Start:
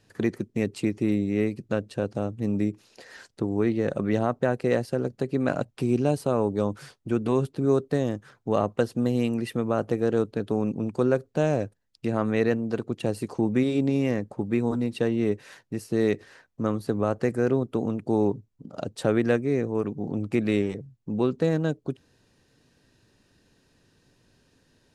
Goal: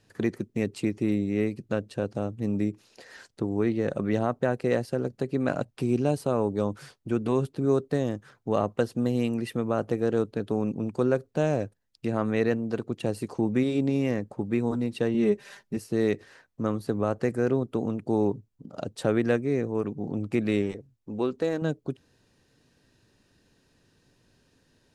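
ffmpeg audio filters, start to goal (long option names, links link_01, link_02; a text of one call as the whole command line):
ffmpeg -i in.wav -filter_complex "[0:a]asettb=1/sr,asplit=3[link_01][link_02][link_03];[link_01]atrim=end=15.144[link_04];[link_02]atrim=start=15.14:end=15.77,asetpts=PTS-STARTPTS,afade=type=in:duration=0.004:curve=qsin,afade=type=out:start_time=0.626:duration=0.004:curve=qsin,aecho=1:1:5:0.8,atrim=end_sample=27783[link_05];[link_03]atrim=start=15.766[link_06];[link_04][link_05]acrossfade=duration=0.004:curve1=hsin:curve2=qsin[link_07];[link_07][link_06]acrossfade=duration=0.004:curve1=qsin:curve2=hsin,asettb=1/sr,asplit=3[link_08][link_09][link_10];[link_08]atrim=end=20.714[link_11];[link_09]atrim=start=20.71:end=21.62,asetpts=PTS-STARTPTS,afade=type=in:duration=0.004:curve=qsin,afade=type=out:start_time=0.906:duration=0.004:curve=qsin,equalizer=frequency=150:width_type=o:width=0.85:gain=-12[link_12];[link_10]atrim=start=21.616[link_13];[link_11][link_12]acrossfade=duration=0.004:curve1=hsin:curve2=qsin[link_14];[link_14][link_13]acrossfade=duration=0.004:curve1=qsin:curve2=hsin,volume=-1.5dB" out.wav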